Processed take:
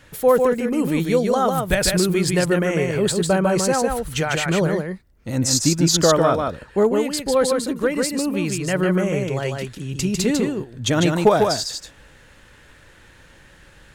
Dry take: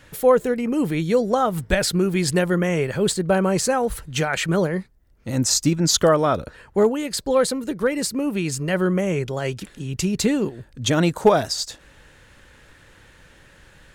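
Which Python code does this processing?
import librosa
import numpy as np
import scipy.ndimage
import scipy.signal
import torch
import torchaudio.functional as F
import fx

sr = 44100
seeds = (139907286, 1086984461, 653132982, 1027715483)

p1 = fx.high_shelf(x, sr, hz=6800.0, db=5.5, at=(0.51, 2.18))
y = p1 + fx.echo_single(p1, sr, ms=149, db=-4.0, dry=0)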